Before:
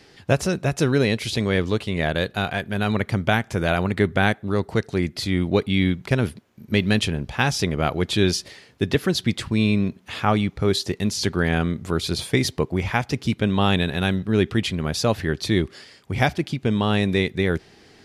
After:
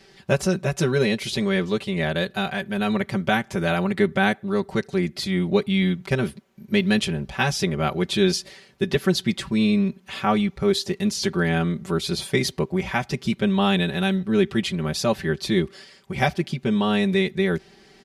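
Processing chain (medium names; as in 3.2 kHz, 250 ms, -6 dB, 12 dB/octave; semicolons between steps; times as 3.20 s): comb 5.2 ms, depth 90%; trim -3.5 dB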